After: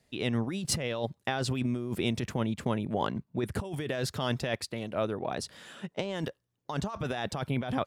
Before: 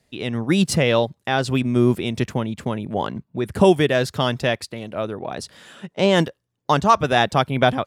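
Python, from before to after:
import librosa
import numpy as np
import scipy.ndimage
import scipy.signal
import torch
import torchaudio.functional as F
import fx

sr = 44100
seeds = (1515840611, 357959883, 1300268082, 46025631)

y = fx.over_compress(x, sr, threshold_db=-23.0, ratio=-1.0)
y = y * librosa.db_to_amplitude(-8.0)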